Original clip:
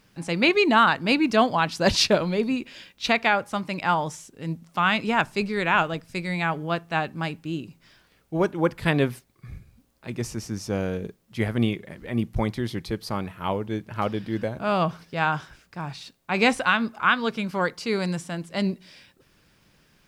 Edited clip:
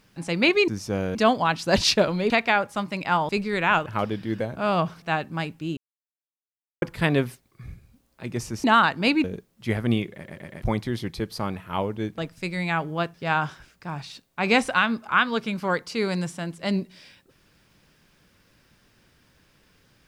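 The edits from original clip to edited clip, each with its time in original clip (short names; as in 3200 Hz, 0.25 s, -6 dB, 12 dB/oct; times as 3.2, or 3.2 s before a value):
0.68–1.28 swap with 10.48–10.95
2.43–3.07 cut
4.06–5.33 cut
5.9–6.86 swap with 13.89–15.05
7.61–8.66 mute
11.85 stutter in place 0.12 s, 4 plays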